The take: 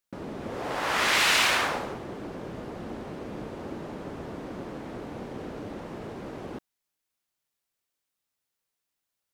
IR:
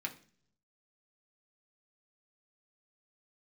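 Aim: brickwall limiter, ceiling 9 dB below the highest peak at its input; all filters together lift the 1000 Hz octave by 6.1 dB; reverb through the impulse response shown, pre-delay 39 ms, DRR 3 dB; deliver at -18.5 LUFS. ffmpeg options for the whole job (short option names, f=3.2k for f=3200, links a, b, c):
-filter_complex "[0:a]equalizer=f=1k:t=o:g=7.5,alimiter=limit=-18dB:level=0:latency=1,asplit=2[a][b];[1:a]atrim=start_sample=2205,adelay=39[c];[b][c]afir=irnorm=-1:irlink=0,volume=-4.5dB[d];[a][d]amix=inputs=2:normalize=0,volume=12dB"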